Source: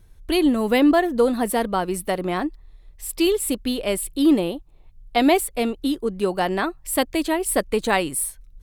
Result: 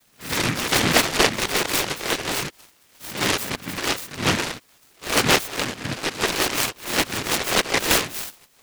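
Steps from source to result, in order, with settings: spectral swells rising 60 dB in 0.44 s; gate -35 dBFS, range -12 dB; spectral gate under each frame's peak -15 dB strong; HPF 300 Hz; low shelf 400 Hz -9.5 dB; in parallel at -7 dB: requantised 8-bit, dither triangular; on the sum: noise vocoder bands 4; on a send: thin delay 0.848 s, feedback 36%, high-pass 1800 Hz, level -23 dB; on the sum: noise-modulated delay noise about 1700 Hz, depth 0.38 ms

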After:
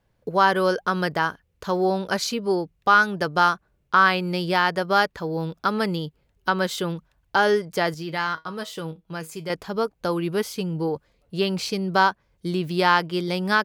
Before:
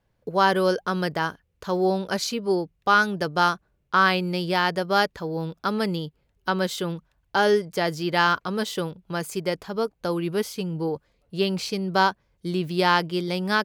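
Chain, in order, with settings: dynamic EQ 1300 Hz, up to +5 dB, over -32 dBFS, Q 0.8; in parallel at +0.5 dB: compressor, threshold -25 dBFS, peak gain reduction 15 dB; 7.94–9.5 on the sum: resonator 160 Hz, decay 0.17 s, harmonics all, mix 70%; gain -4 dB

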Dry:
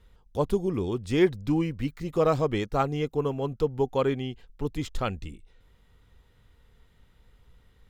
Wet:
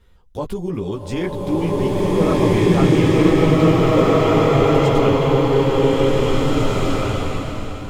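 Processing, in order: chorus voices 4, 1 Hz, delay 14 ms, depth 4.2 ms; maximiser +21.5 dB; bloom reverb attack 2.03 s, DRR -11 dB; gain -14 dB

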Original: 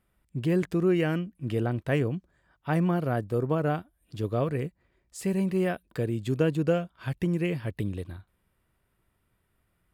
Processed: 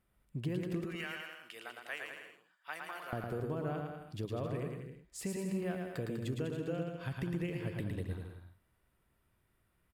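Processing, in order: 0.84–3.13 HPF 1400 Hz 12 dB/oct; compressor 6:1, threshold -31 dBFS, peak gain reduction 11.5 dB; bouncing-ball echo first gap 0.11 s, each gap 0.8×, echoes 5; gain -4.5 dB

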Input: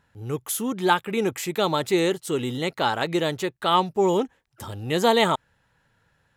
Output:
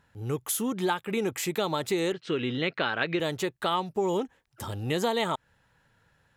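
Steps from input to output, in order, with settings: compressor 4:1, threshold -25 dBFS, peak gain reduction 10 dB; 2.12–3.2 speaker cabinet 110–4400 Hz, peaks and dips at 850 Hz -7 dB, 1600 Hz +7 dB, 2500 Hz +7 dB

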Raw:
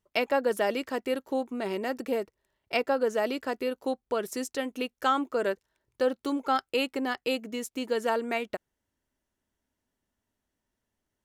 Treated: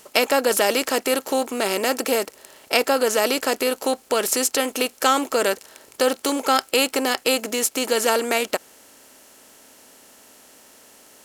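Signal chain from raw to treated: per-bin compression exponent 0.6; tone controls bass -4 dB, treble +13 dB; gain +4.5 dB

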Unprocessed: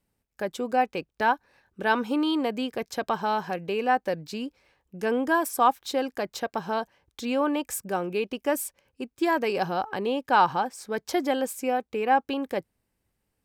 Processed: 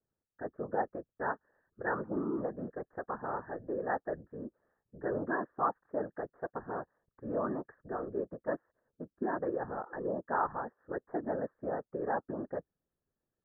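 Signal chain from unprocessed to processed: rippled Chebyshev low-pass 1800 Hz, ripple 6 dB; whisperiser; gain -7 dB

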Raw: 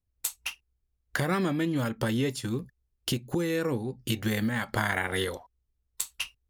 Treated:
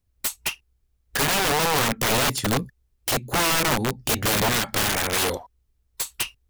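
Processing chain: wrapped overs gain 25.5 dB; gain +9 dB

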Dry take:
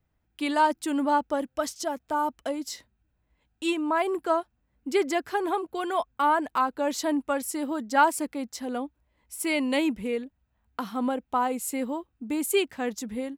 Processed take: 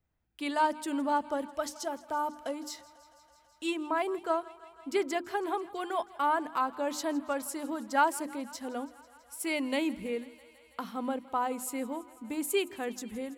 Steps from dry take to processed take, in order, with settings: notches 50/100/150/200/250/300/350 Hz; thinning echo 0.164 s, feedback 81%, high-pass 330 Hz, level -20.5 dB; gain -5 dB

